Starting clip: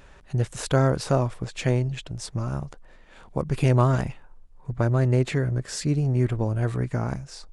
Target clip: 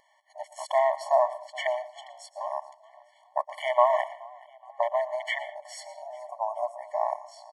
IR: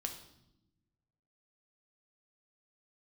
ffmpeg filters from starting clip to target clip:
-filter_complex "[0:a]afwtdn=0.02,asplit=2[a][b];[b]alimiter=limit=-16.5dB:level=0:latency=1,volume=0.5dB[c];[a][c]amix=inputs=2:normalize=0,asettb=1/sr,asplit=3[d][e][f];[d]atrim=end=6.024[g];[e]atrim=start=6.02:end=6.78,asetpts=PTS-STARTPTS,afade=t=in:d=0.004:c=qsin,afade=t=out:st=0.756:d=0.004:c=qsin,asuperstop=centerf=2800:order=12:qfactor=0.72[h];[f]atrim=start=6.776[i];[g][h]acrossfade=d=0.004:c1=hsin:c2=qsin[j];[j][i]acrossfade=d=0.004:c1=qsin:c2=hsin,asplit=4[k][l][m][n];[l]adelay=424,afreqshift=75,volume=-23.5dB[o];[m]adelay=848,afreqshift=150,volume=-30.1dB[p];[n]adelay=1272,afreqshift=225,volume=-36.6dB[q];[k][o][p][q]amix=inputs=4:normalize=0,asplit=2[r][s];[1:a]atrim=start_sample=2205,atrim=end_sample=4410,adelay=116[t];[s][t]afir=irnorm=-1:irlink=0,volume=-14dB[u];[r][u]amix=inputs=2:normalize=0,afftfilt=real='re*eq(mod(floor(b*sr/1024/580),2),1)':imag='im*eq(mod(floor(b*sr/1024/580),2),1)':win_size=1024:overlap=0.75,volume=3.5dB"

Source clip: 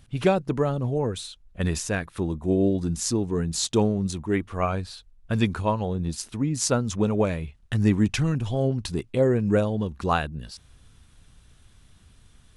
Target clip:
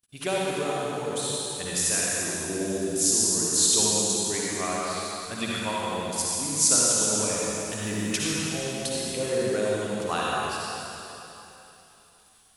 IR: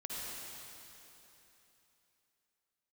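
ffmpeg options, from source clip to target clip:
-filter_complex "[0:a]agate=range=-26dB:threshold=-51dB:ratio=16:detection=peak,aemphasis=mode=production:type=riaa,asettb=1/sr,asplit=3[a][b][c];[a]atrim=end=6.984[d];[b]atrim=start=6.98:end=8.05,asetpts=PTS-STARTPTS,afade=t=in:d=0.004:c=qsin,afade=t=out:st=1.066:d=0.004:c=qsin,asoftclip=type=hard:threshold=-18.5dB[e];[c]atrim=start=8.046[f];[d][e]acrossfade=d=0.004:c1=hsin:c2=qsin[g];[g][f]acrossfade=d=0.004:c1=qsin:c2=hsin[h];[1:a]atrim=start_sample=2205[i];[h][i]afir=irnorm=-1:irlink=0,volume=-1.5dB"

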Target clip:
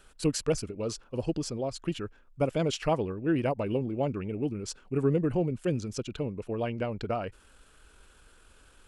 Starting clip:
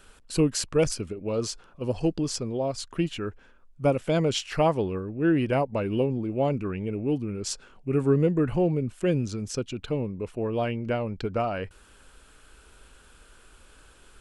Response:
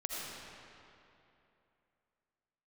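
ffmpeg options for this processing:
-af "atempo=1.6,volume=-3.5dB"

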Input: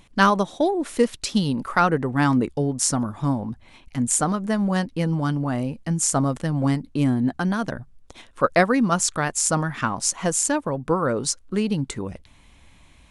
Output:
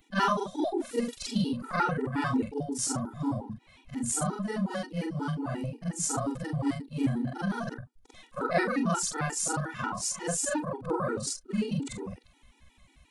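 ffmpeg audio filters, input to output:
-af "afftfilt=real='re':imag='-im':win_size=4096:overlap=0.75,afftfilt=real='re*gt(sin(2*PI*5.6*pts/sr)*(1-2*mod(floor(b*sr/1024/250),2)),0)':imag='im*gt(sin(2*PI*5.6*pts/sr)*(1-2*mod(floor(b*sr/1024/250),2)),0)':win_size=1024:overlap=0.75"

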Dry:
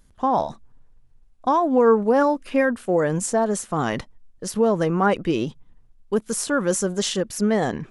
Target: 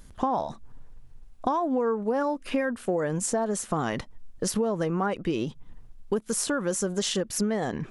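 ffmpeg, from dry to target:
-af "acompressor=threshold=-33dB:ratio=5,volume=7.5dB"

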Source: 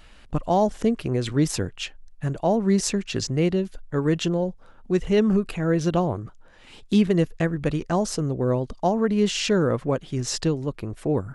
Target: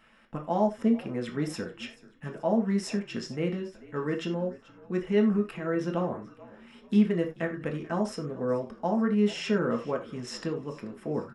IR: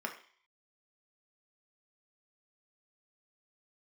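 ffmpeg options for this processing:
-filter_complex "[0:a]asplit=5[a][b][c][d][e];[b]adelay=434,afreqshift=-56,volume=-20dB[f];[c]adelay=868,afreqshift=-112,volume=-26.6dB[g];[d]adelay=1302,afreqshift=-168,volume=-33.1dB[h];[e]adelay=1736,afreqshift=-224,volume=-39.7dB[i];[a][f][g][h][i]amix=inputs=5:normalize=0[j];[1:a]atrim=start_sample=2205,atrim=end_sample=4410[k];[j][k]afir=irnorm=-1:irlink=0,volume=-8dB"

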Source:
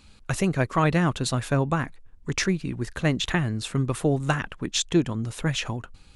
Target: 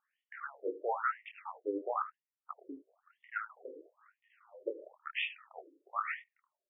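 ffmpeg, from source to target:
-filter_complex "[0:a]afwtdn=0.02,flanger=delay=19:depth=2.8:speed=2.8,asetrate=40517,aresample=44100,bass=f=250:g=-12,treble=f=4k:g=-5,asetrate=35002,aresample=44100,atempo=1.25992,equalizer=f=1.3k:t=o:w=0.46:g=11.5,asplit=2[a][b];[b]aecho=0:1:74:0.211[c];[a][c]amix=inputs=2:normalize=0,afftfilt=real='re*between(b*sr/1024,390*pow(2600/390,0.5+0.5*sin(2*PI*1*pts/sr))/1.41,390*pow(2600/390,0.5+0.5*sin(2*PI*1*pts/sr))*1.41)':imag='im*between(b*sr/1024,390*pow(2600/390,0.5+0.5*sin(2*PI*1*pts/sr))/1.41,390*pow(2600/390,0.5+0.5*sin(2*PI*1*pts/sr))*1.41)':win_size=1024:overlap=0.75,volume=-4dB"

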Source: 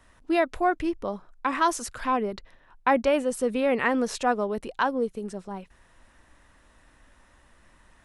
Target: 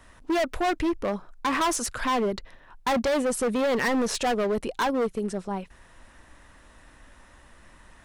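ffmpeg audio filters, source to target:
-af "acontrast=61,asoftclip=type=hard:threshold=-20.5dB,volume=-1dB"

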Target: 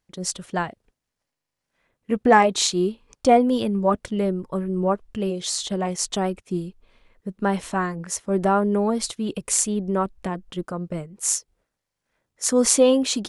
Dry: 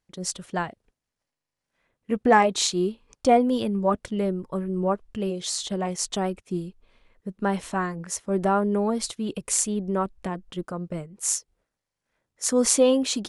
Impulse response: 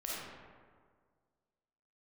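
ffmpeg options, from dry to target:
-af "volume=2.5dB"

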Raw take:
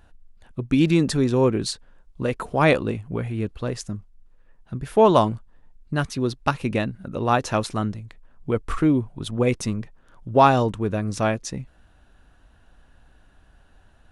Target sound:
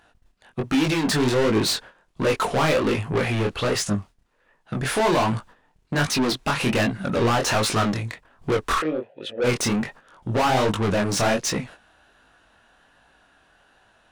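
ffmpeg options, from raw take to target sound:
-filter_complex "[0:a]agate=range=-13dB:threshold=-44dB:ratio=16:detection=peak,dynaudnorm=f=260:g=17:m=11.5dB,alimiter=limit=-11.5dB:level=0:latency=1:release=130,asplit=3[a][b][c];[a]afade=t=out:st=8.78:d=0.02[d];[b]asplit=3[e][f][g];[e]bandpass=f=530:t=q:w=8,volume=0dB[h];[f]bandpass=f=1.84k:t=q:w=8,volume=-6dB[i];[g]bandpass=f=2.48k:t=q:w=8,volume=-9dB[j];[h][i][j]amix=inputs=3:normalize=0,afade=t=in:st=8.78:d=0.02,afade=t=out:st=9.43:d=0.02[k];[c]afade=t=in:st=9.43:d=0.02[l];[d][k][l]amix=inputs=3:normalize=0,asplit=2[m][n];[n]highpass=f=720:p=1,volume=28dB,asoftclip=type=tanh:threshold=-11.5dB[o];[m][o]amix=inputs=2:normalize=0,lowpass=f=6.8k:p=1,volume=-6dB,flanger=delay=18.5:depth=7.6:speed=1.3"

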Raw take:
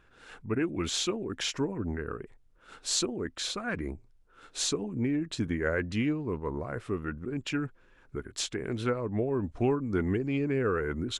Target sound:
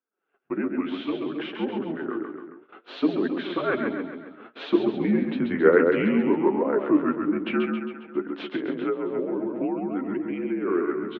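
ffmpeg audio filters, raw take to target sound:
-filter_complex "[0:a]dynaudnorm=f=240:g=21:m=7.5dB,equalizer=f=470:w=0.56:g=11,bandreject=f=50:t=h:w=6,bandreject=f=100:t=h:w=6,bandreject=f=150:t=h:w=6,bandreject=f=200:t=h:w=6,bandreject=f=250:t=h:w=6,bandreject=f=300:t=h:w=6,bandreject=f=350:t=h:w=6,bandreject=f=400:t=h:w=6,bandreject=f=450:t=h:w=6,aecho=1:1:135|270|405|540|675|810|945:0.562|0.304|0.164|0.0885|0.0478|0.0258|0.0139,highpass=f=320:t=q:w=0.5412,highpass=f=320:t=q:w=1.307,lowpass=f=3.1k:t=q:w=0.5176,lowpass=f=3.1k:t=q:w=0.7071,lowpass=f=3.1k:t=q:w=1.932,afreqshift=-72,agate=range=-29dB:threshold=-40dB:ratio=16:detection=peak,flanger=delay=3.7:depth=8.3:regen=46:speed=0.6:shape=triangular,asplit=3[a][b][c];[a]afade=t=out:st=8.41:d=0.02[d];[b]acompressor=threshold=-24dB:ratio=6,afade=t=in:st=8.41:d=0.02,afade=t=out:st=10.66:d=0.02[e];[c]afade=t=in:st=10.66:d=0.02[f];[d][e][f]amix=inputs=3:normalize=0"

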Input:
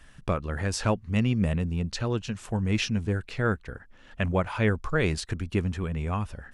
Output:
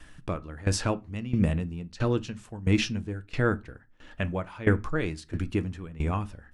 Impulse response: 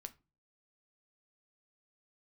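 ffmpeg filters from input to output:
-filter_complex "[0:a]asplit=2[a][b];[b]equalizer=f=310:t=o:w=0.28:g=9[c];[1:a]atrim=start_sample=2205,asetrate=41013,aresample=44100[d];[c][d]afir=irnorm=-1:irlink=0,volume=11.5dB[e];[a][e]amix=inputs=2:normalize=0,aeval=exprs='val(0)*pow(10,-18*if(lt(mod(1.5*n/s,1),2*abs(1.5)/1000),1-mod(1.5*n/s,1)/(2*abs(1.5)/1000),(mod(1.5*n/s,1)-2*abs(1.5)/1000)/(1-2*abs(1.5)/1000))/20)':c=same,volume=-6dB"

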